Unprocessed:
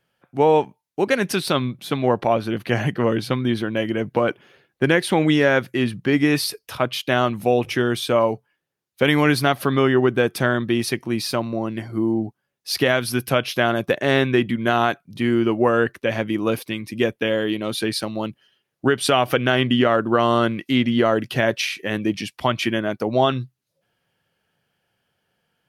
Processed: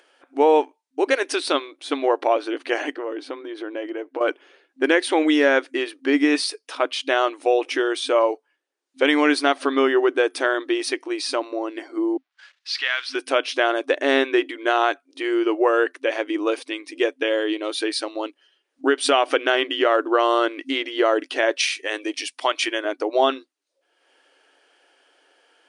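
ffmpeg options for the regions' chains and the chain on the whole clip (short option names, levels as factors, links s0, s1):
-filter_complex "[0:a]asettb=1/sr,asplit=3[s0][s1][s2];[s0]atrim=end=2.964[s3];[s1]atrim=start=2.96:end=4.21,asetpts=PTS-STARTPTS,afade=t=in:d=0.004:c=qsin,afade=t=out:st=1.246:d=0.004:c=qsin,highshelf=f=2400:g=-11,acompressor=threshold=0.0708:ratio=4:attack=3.2:release=140:knee=1:detection=peak[s4];[s2]atrim=start=4.206[s5];[s3][s4]acrossfade=d=0.004:c1=hsin:c2=qsin[s6];[s6][s5]acrossfade=d=0.004:c1=qsin:c2=hsin,asettb=1/sr,asplit=3[s7][s8][s9];[s7]atrim=end=12.174[s10];[s8]atrim=start=12.17:end=13.15,asetpts=PTS-STARTPTS,afade=t=in:d=0.004:c=qsin,afade=t=out:st=0.976:d=0.004:c=qsin,aeval=exprs='val(0)+0.5*0.0224*sgn(val(0))':c=same,asuperpass=centerf=2600:order=4:qfactor=0.78,agate=range=0.0224:threshold=0.00708:ratio=16:release=100:detection=peak[s11];[s9]atrim=start=13.146[s12];[s10][s11]acrossfade=d=0.004:c1=hsin:c2=qsin[s13];[s13][s12]acrossfade=d=0.004:c1=qsin:c2=hsin,asettb=1/sr,asplit=3[s14][s15][s16];[s14]atrim=end=21.604[s17];[s15]atrim=start=21.6:end=22.85,asetpts=PTS-STARTPTS,afade=t=in:d=0.004:c=qsin,afade=t=out:st=1.246:d=0.004:c=qsin,highpass=390,aemphasis=mode=production:type=cd[s18];[s16]atrim=start=22.846[s19];[s17][s18]acrossfade=d=0.004:c1=hsin:c2=qsin[s20];[s20][s19]acrossfade=d=0.004:c1=qsin:c2=hsin,afftfilt=real='re*between(b*sr/4096,260,10000)':imag='im*between(b*sr/4096,260,10000)':win_size=4096:overlap=0.75,acompressor=mode=upward:threshold=0.00447:ratio=2.5"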